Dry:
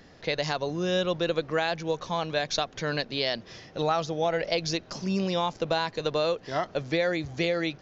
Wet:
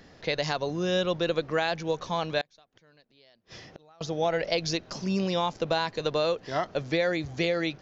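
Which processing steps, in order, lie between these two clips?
2.41–4.01 s: inverted gate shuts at -31 dBFS, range -31 dB

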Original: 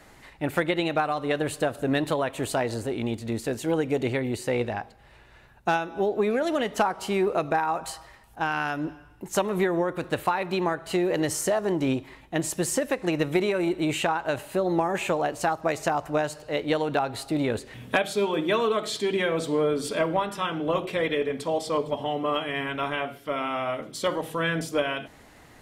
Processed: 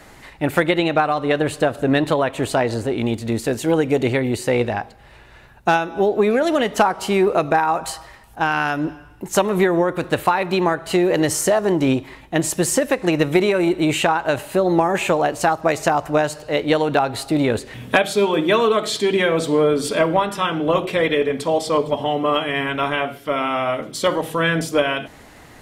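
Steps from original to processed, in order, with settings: 0.78–2.98 s: treble shelf 7.2 kHz -8 dB; trim +7.5 dB

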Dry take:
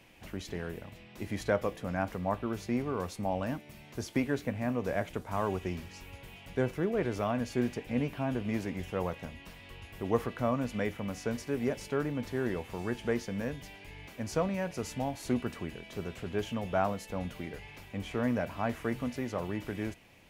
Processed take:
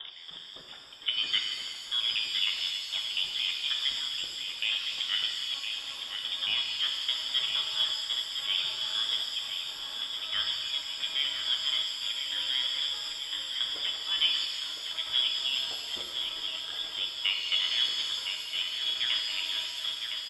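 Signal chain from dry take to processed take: slices played last to first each 154 ms, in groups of 6; trance gate "x..x..xxxx.xxx" 161 bpm -12 dB; feedback delay 1012 ms, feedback 52%, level -7 dB; frequency inversion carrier 3.6 kHz; pitch-shifted reverb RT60 2 s, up +7 st, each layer -8 dB, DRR 2.5 dB

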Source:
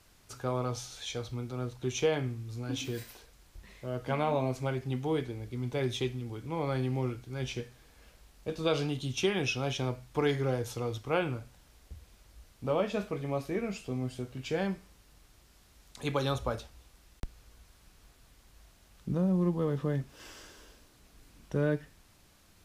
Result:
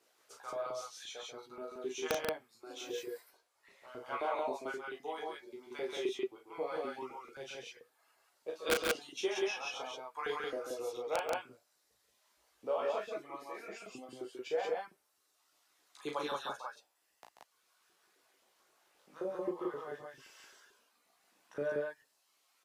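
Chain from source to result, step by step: reverb removal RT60 1.5 s; chorus voices 2, 0.13 Hz, delay 16 ms, depth 3.3 ms; LFO high-pass saw up 3.8 Hz 340–1600 Hz; integer overflow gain 17.5 dB; on a send: loudspeakers at several distances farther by 12 m -5 dB, 47 m -7 dB, 61 m -1 dB; on the sum: trim -6 dB

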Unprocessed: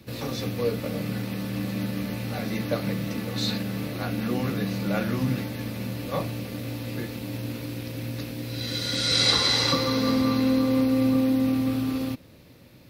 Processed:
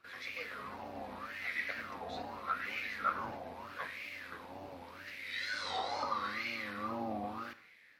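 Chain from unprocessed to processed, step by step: octave divider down 1 oct, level -4 dB; treble shelf 4.9 kHz +10.5 dB; level rider gain up to 4 dB; wah-wah 0.5 Hz 740–2200 Hz, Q 7.6; granular stretch 0.62×, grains 20 ms; gated-style reverb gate 250 ms falling, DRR 10.5 dB; wow and flutter 110 cents; trim +4 dB

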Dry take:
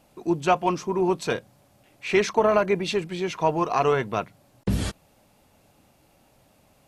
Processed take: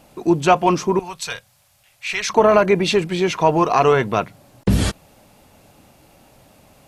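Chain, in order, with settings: in parallel at -3 dB: peak limiter -19 dBFS, peak gain reduction 11.5 dB; 0.99–2.30 s: on the sum: amplifier tone stack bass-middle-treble 10-0-10; trim +4.5 dB

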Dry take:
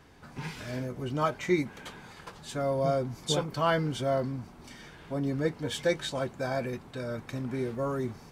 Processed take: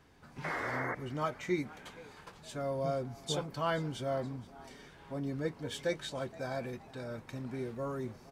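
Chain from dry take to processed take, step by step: painted sound noise, 0.44–0.95 s, 250–2200 Hz -30 dBFS; frequency-shifting echo 471 ms, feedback 46%, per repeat +140 Hz, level -20.5 dB; trim -6.5 dB

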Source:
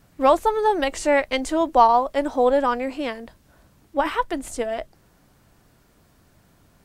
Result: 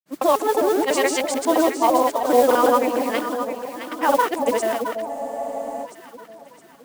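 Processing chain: time reversed locally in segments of 137 ms; high-pass 190 Hz 24 dB/octave; peak limiter -13 dBFS, peak gain reduction 9 dB; granulator, pitch spread up and down by 0 st; modulation noise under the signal 18 dB; echo whose repeats swap between lows and highs 332 ms, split 890 Hz, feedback 65%, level -5 dB; spectral freeze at 5.12 s, 0.73 s; trim +5.5 dB

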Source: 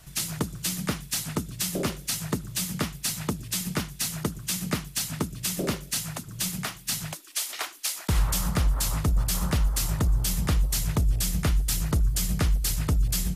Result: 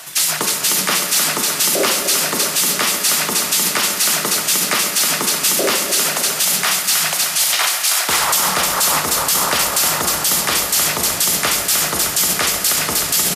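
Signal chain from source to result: high-pass 570 Hz 12 dB/octave; reverse; upward compressor, threshold -31 dBFS; reverse; feedback delay 307 ms, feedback 45%, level -8.5 dB; on a send at -7 dB: reverberation RT60 2.2 s, pre-delay 3 ms; on the sum: loudness maximiser +23.5 dB; trim -4.5 dB

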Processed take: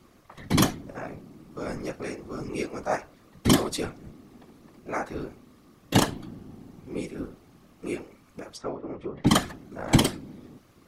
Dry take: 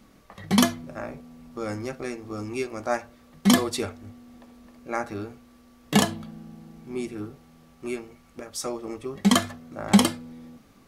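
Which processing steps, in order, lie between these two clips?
8.50–9.27 s: low-pass that closes with the level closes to 1.7 kHz, closed at -30 dBFS; whisper effect; trim -1.5 dB

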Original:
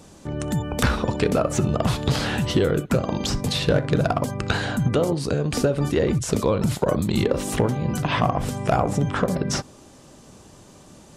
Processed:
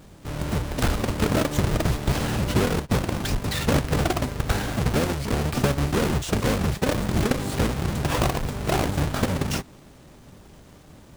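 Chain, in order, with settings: square wave that keeps the level; harmony voices -12 st -1 dB; trim -8 dB

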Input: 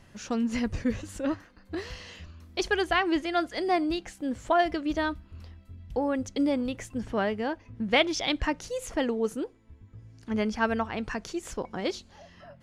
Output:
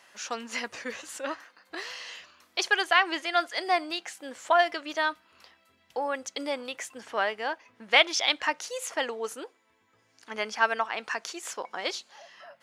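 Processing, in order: high-pass 790 Hz 12 dB/octave; trim +5 dB

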